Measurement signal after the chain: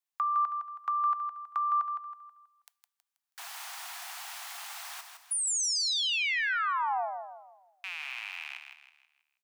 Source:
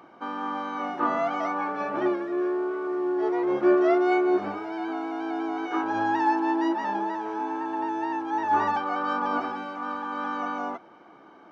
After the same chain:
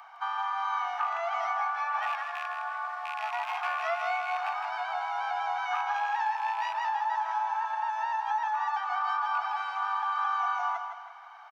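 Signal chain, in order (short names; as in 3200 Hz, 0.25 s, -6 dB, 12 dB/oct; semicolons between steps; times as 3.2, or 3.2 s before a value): rattling part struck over -34 dBFS, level -30 dBFS; steep high-pass 700 Hz 96 dB/oct; compressor, threshold -32 dBFS; feedback echo 0.161 s, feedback 39%, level -7 dB; two-slope reverb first 0.31 s, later 1.7 s, from -20 dB, DRR 19 dB; gain +4 dB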